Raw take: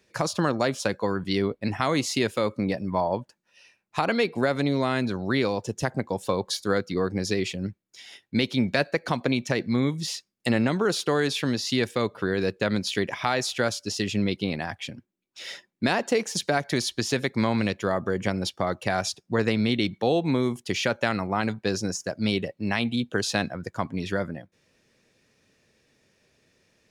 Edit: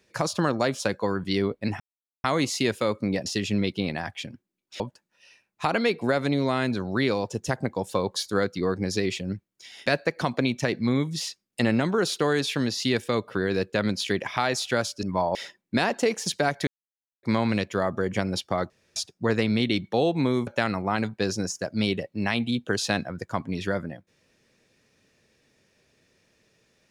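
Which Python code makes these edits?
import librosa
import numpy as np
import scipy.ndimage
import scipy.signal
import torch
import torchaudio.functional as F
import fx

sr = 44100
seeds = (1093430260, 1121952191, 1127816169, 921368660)

y = fx.edit(x, sr, fx.insert_silence(at_s=1.8, length_s=0.44),
    fx.swap(start_s=2.82, length_s=0.32, other_s=13.9, other_length_s=1.54),
    fx.cut(start_s=8.2, length_s=0.53),
    fx.silence(start_s=16.76, length_s=0.56),
    fx.room_tone_fill(start_s=18.79, length_s=0.26),
    fx.cut(start_s=20.56, length_s=0.36), tone=tone)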